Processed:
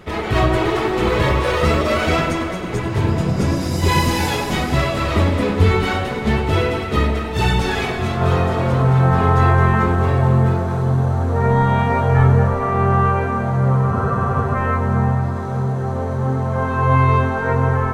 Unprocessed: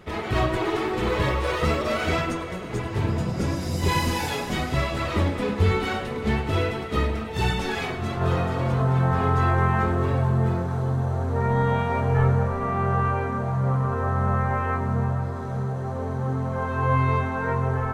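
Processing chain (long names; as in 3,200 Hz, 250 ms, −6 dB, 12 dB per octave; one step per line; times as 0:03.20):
delay that swaps between a low-pass and a high-pass 112 ms, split 980 Hz, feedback 66%, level −6.5 dB
frozen spectrum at 0:13.94, 0.61 s
level +6 dB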